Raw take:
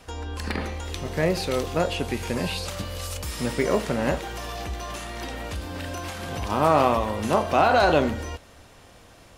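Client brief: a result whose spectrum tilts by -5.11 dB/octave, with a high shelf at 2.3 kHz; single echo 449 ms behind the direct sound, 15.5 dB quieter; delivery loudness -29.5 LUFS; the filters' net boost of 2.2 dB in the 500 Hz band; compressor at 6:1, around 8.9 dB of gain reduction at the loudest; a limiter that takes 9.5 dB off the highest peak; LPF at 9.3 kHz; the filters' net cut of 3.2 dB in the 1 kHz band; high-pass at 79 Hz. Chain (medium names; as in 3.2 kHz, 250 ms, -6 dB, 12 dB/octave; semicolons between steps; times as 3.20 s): high-pass 79 Hz; low-pass 9.3 kHz; peaking EQ 500 Hz +5 dB; peaking EQ 1 kHz -6.5 dB; treble shelf 2.3 kHz -3.5 dB; compression 6:1, threshold -24 dBFS; peak limiter -24 dBFS; delay 449 ms -15.5 dB; trim +4.5 dB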